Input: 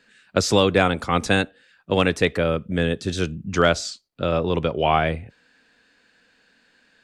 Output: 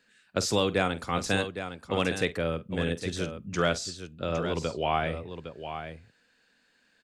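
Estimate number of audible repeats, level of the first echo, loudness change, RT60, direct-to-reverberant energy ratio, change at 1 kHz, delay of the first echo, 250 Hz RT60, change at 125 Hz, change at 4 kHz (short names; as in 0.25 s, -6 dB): 2, -15.5 dB, -8.0 dB, none, none, -7.5 dB, 48 ms, none, -8.0 dB, -6.5 dB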